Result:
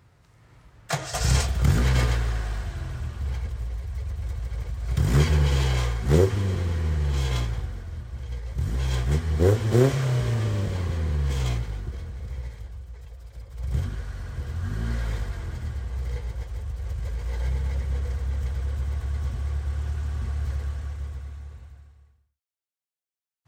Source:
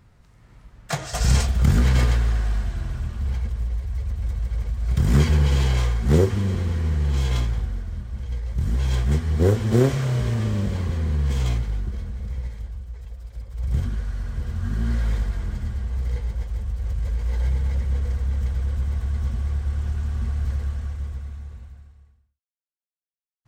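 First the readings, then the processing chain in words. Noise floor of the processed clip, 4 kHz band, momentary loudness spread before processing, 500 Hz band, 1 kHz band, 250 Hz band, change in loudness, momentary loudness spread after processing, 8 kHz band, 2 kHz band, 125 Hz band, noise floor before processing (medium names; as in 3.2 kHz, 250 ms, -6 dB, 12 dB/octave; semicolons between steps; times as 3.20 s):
-71 dBFS, 0.0 dB, 13 LU, -0.5 dB, 0.0 dB, -3.5 dB, -3.0 dB, 15 LU, 0.0 dB, 0.0 dB, -2.5 dB, -68 dBFS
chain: high-pass 73 Hz; peaking EQ 210 Hz -11 dB 0.31 oct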